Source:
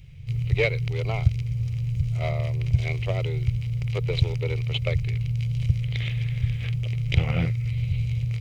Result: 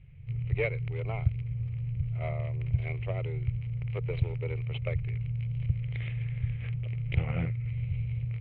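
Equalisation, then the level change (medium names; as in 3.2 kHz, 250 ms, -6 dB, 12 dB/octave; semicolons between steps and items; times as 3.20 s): low-pass 2.5 kHz 24 dB/octave; -6.5 dB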